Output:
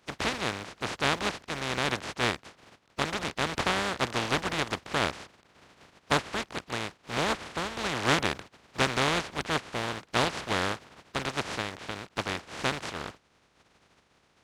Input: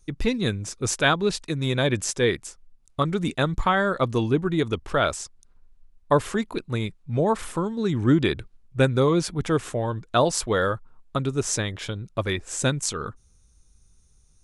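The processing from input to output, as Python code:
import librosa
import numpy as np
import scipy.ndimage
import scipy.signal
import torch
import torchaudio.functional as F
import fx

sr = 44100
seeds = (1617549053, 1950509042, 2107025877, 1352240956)

y = fx.spec_flatten(x, sr, power=0.11)
y = scipy.signal.sosfilt(scipy.signal.butter(2, 53.0, 'highpass', fs=sr, output='sos'), y)
y = fx.spacing_loss(y, sr, db_at_10k=26)
y = y * librosa.db_to_amplitude(1.5)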